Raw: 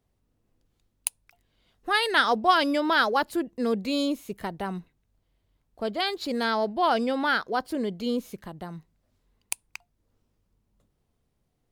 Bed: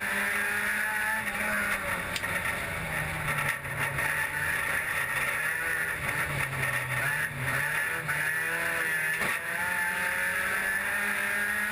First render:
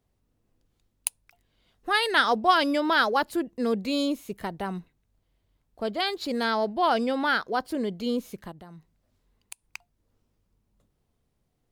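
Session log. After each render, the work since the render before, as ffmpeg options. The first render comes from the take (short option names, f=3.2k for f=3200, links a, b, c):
-filter_complex "[0:a]asplit=3[a][b][c];[a]afade=t=out:st=8.51:d=0.02[d];[b]acompressor=threshold=-48dB:ratio=2:attack=3.2:release=140:knee=1:detection=peak,afade=t=in:st=8.51:d=0.02,afade=t=out:st=9.63:d=0.02[e];[c]afade=t=in:st=9.63:d=0.02[f];[d][e][f]amix=inputs=3:normalize=0"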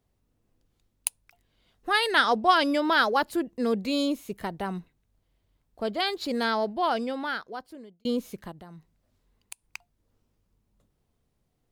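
-filter_complex "[0:a]asettb=1/sr,asplit=3[a][b][c];[a]atrim=end=2.214[d];[b]atrim=start=2.21:end=2.71,asetpts=PTS-STARTPTS,afade=t=in:d=0.004:c=qsin,afade=t=out:st=0.496:d=0.004:c=qsin,lowpass=f=12k:w=0.5412,lowpass=f=12k:w=1.3066[e];[c]atrim=start=2.706[f];[d][e]acrossfade=d=0.004:c1=hsin:c2=qsin[g];[g][f]acrossfade=d=0.004:c1=qsin:c2=hsin,asplit=2[h][i];[h]atrim=end=8.05,asetpts=PTS-STARTPTS,afade=t=out:st=6.43:d=1.62[j];[i]atrim=start=8.05,asetpts=PTS-STARTPTS,afade=t=in:d=0.004:c=hsin[k];[j][k]concat=n=2:v=0:a=1"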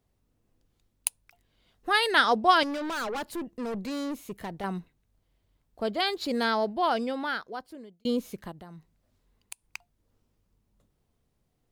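-filter_complex "[0:a]asettb=1/sr,asplit=3[a][b][c];[a]atrim=end=2.634[d];[b]atrim=start=2.63:end=4.64,asetpts=PTS-STARTPTS,afade=t=in:d=0.004:c=qsin,afade=t=out:st=2.006:d=0.004:c=qsin,aeval=exprs='(tanh(31.6*val(0)+0.25)-tanh(0.25))/31.6':c=same[e];[c]atrim=start=4.636[f];[d][e]acrossfade=d=0.004:c1=hsin:c2=qsin[g];[g][f]acrossfade=d=0.004:c1=qsin:c2=hsin"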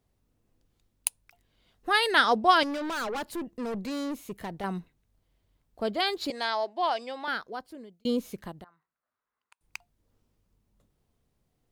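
-filter_complex "[0:a]asettb=1/sr,asplit=3[a][b][c];[a]atrim=end=6.304[d];[b]atrim=start=6.3:end=7.28,asetpts=PTS-STARTPTS,afade=t=in:d=0.004:c=qsin,afade=t=out:st=0.976:d=0.004:c=qsin,highpass=f=370:w=0.5412,highpass=f=370:w=1.3066,equalizer=f=460:t=q:w=4:g=-10,equalizer=f=1.4k:t=q:w=4:g=-7,equalizer=f=9.8k:t=q:w=4:g=-5,lowpass=f=9.8k:w=0.5412,lowpass=f=9.8k:w=1.3066[e];[c]atrim=start=7.276[f];[d][e]acrossfade=d=0.004:c1=hsin:c2=qsin[g];[g][f]acrossfade=d=0.004:c1=qsin:c2=hsin,asettb=1/sr,asplit=3[h][i][j];[h]atrim=end=8.644[k];[i]atrim=start=8.64:end=9.61,asetpts=PTS-STARTPTS,afade=t=in:d=0.004:c=qsin,afade=t=out:st=0.966:d=0.004:c=qsin,bandpass=f=1.3k:t=q:w=3.1[l];[j]atrim=start=9.606[m];[k][l]acrossfade=d=0.004:c1=hsin:c2=qsin[n];[n][m]acrossfade=d=0.004:c1=qsin:c2=hsin"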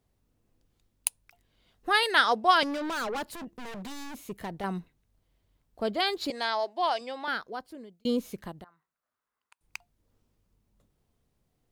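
-filter_complex "[0:a]asettb=1/sr,asplit=3[a][b][c];[a]atrim=end=2.034[d];[b]atrim=start=2.03:end=2.63,asetpts=PTS-STARTPTS,afade=t=in:d=0.004:c=qsin,afade=t=out:st=0.596:d=0.004:c=qsin,lowshelf=f=280:g=-11[e];[c]atrim=start=2.626[f];[d][e]acrossfade=d=0.004:c1=hsin:c2=qsin[g];[g][f]acrossfade=d=0.004:c1=qsin:c2=hsin,asettb=1/sr,asplit=3[h][i][j];[h]atrim=end=3.304[k];[i]atrim=start=3.3:end=4.28,asetpts=PTS-STARTPTS,afade=t=in:d=0.004:c=qsin,afade=t=out:st=0.976:d=0.004:c=qsin,aeval=exprs='0.0178*(abs(mod(val(0)/0.0178+3,4)-2)-1)':c=same[l];[j]atrim=start=4.276[m];[k][l]acrossfade=d=0.004:c1=hsin:c2=qsin[n];[n][m]acrossfade=d=0.004:c1=qsin:c2=hsin,asettb=1/sr,asplit=3[o][p][q];[o]atrim=end=6.594[r];[p]atrim=start=6.59:end=7.01,asetpts=PTS-STARTPTS,afade=t=in:d=0.004:c=qsin,afade=t=out:st=0.416:d=0.004:c=qsin,bass=f=250:g=-5,treble=f=4k:g=4[s];[q]atrim=start=7.006[t];[r][s]acrossfade=d=0.004:c1=hsin:c2=qsin[u];[u][t]acrossfade=d=0.004:c1=qsin:c2=hsin"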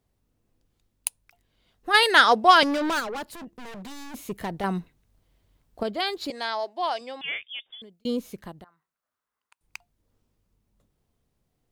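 -filter_complex "[0:a]asplit=3[a][b][c];[a]afade=t=out:st=1.93:d=0.02[d];[b]acontrast=77,afade=t=in:st=1.93:d=0.02,afade=t=out:st=2.99:d=0.02[e];[c]afade=t=in:st=2.99:d=0.02[f];[d][e][f]amix=inputs=3:normalize=0,asettb=1/sr,asplit=3[g][h][i];[g]atrim=end=7.214[j];[h]atrim=start=7.21:end=7.82,asetpts=PTS-STARTPTS,afade=t=in:d=0.004:c=qsin,afade=t=out:st=0.606:d=0.004:c=qsin,lowpass=f=3.1k:t=q:w=0.5098,lowpass=f=3.1k:t=q:w=0.6013,lowpass=f=3.1k:t=q:w=0.9,lowpass=f=3.1k:t=q:w=2.563,afreqshift=-3700[k];[i]atrim=start=7.816[l];[j][k]acrossfade=d=0.004:c1=hsin:c2=qsin[m];[m][l]acrossfade=d=0.004:c1=qsin:c2=hsin,asplit=3[n][o][p];[n]atrim=end=4.142[q];[o]atrim=start=4.138:end=5.832,asetpts=PTS-STARTPTS,volume=5.5dB[r];[p]atrim=start=5.828[s];[q][r]acrossfade=d=0.004:c1=hsin:c2=hsin[t];[t][s]acrossfade=d=0.004:c1=hsin:c2=hsin"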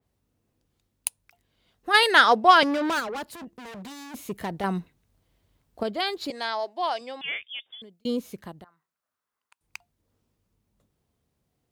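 -af "highpass=54,adynamicequalizer=threshold=0.02:dfrequency=3500:dqfactor=0.7:tfrequency=3500:tqfactor=0.7:attack=5:release=100:ratio=0.375:range=3:mode=cutabove:tftype=highshelf"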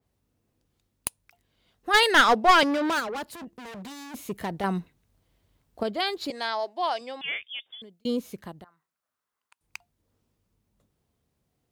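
-af "aeval=exprs='clip(val(0),-1,0.158)':c=same"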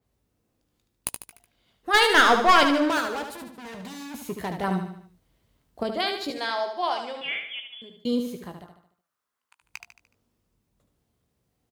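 -filter_complex "[0:a]asplit=2[a][b];[b]adelay=17,volume=-10dB[c];[a][c]amix=inputs=2:normalize=0,aecho=1:1:74|148|222|296|370:0.447|0.205|0.0945|0.0435|0.02"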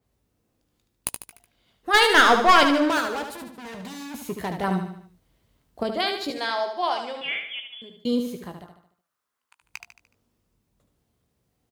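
-af "volume=1.5dB"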